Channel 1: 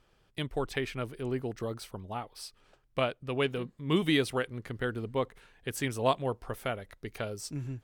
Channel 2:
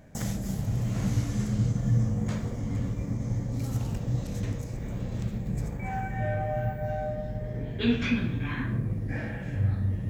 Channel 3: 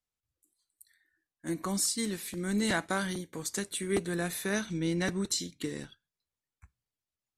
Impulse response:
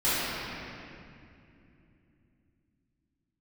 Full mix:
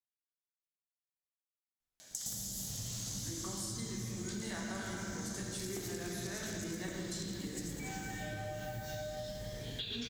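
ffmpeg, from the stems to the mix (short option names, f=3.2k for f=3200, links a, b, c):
-filter_complex "[1:a]aexciter=amount=5.4:drive=7.8:freq=3.4k,adelay=2000,volume=2.5dB,asplit=2[a][b];[b]volume=-13dB[c];[2:a]adelay=1800,volume=-7dB,asplit=2[d][e];[e]volume=-10dB[f];[a]bandpass=f=3.5k:t=q:w=0.63:csg=0,acompressor=threshold=-35dB:ratio=6,volume=0dB[g];[3:a]atrim=start_sample=2205[h];[f][h]afir=irnorm=-1:irlink=0[i];[c]aecho=0:1:111:1[j];[d][g][i][j]amix=inputs=4:normalize=0,acompressor=threshold=-38dB:ratio=6"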